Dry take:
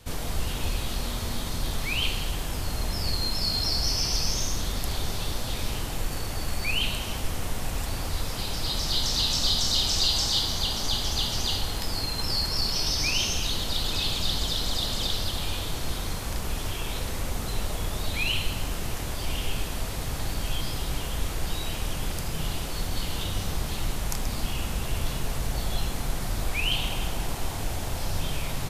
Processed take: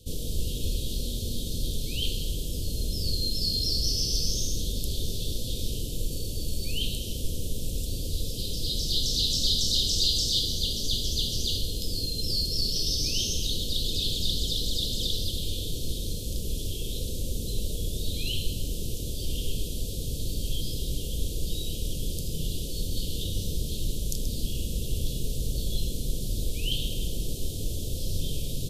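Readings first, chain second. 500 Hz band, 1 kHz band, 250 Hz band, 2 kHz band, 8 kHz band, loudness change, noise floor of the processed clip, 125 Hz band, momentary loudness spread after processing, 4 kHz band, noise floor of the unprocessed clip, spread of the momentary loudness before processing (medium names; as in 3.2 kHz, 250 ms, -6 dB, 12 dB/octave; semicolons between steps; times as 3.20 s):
-2.5 dB, under -25 dB, -1.0 dB, -16.0 dB, -1.0 dB, -1.0 dB, -33 dBFS, 0.0 dB, 9 LU, -1.0 dB, -32 dBFS, 9 LU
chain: elliptic band-stop 500–3300 Hz, stop band 40 dB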